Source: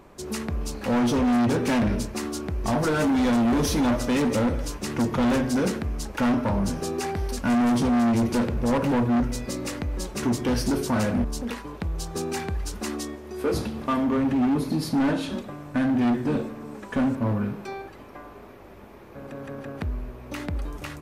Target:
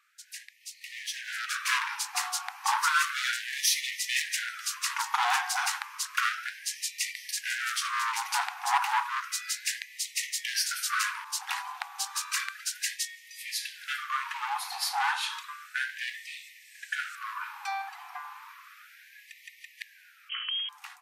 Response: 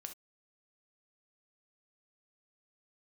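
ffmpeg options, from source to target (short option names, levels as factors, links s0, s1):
-filter_complex "[0:a]asettb=1/sr,asplit=3[s0][s1][s2];[s0]atrim=end=20.294[s3];[s1]atrim=start=20.29:end=20.69,asetpts=PTS-STARTPTS,afade=t=in:d=0.004:c=qsin,afade=t=out:st=0.396:d=0.004:c=qsin,lowpass=f=2800:t=q:w=0.5098,lowpass=f=2800:t=q:w=0.6013,lowpass=f=2800:t=q:w=0.9,lowpass=f=2800:t=q:w=2.563,afreqshift=-3300[s4];[s2]atrim=start=20.686[s5];[s3][s4]acrossfade=d=0.004:c1=hsin:c2=qsin[s6];[s6][s5]acrossfade=d=0.004:c1=qsin:c2=hsin,dynaudnorm=f=270:g=9:m=4.22,afftfilt=real='re*gte(b*sr/1024,700*pow(1800/700,0.5+0.5*sin(2*PI*0.32*pts/sr)))':imag='im*gte(b*sr/1024,700*pow(1800/700,0.5+0.5*sin(2*PI*0.32*pts/sr)))':win_size=1024:overlap=0.75,volume=0.447"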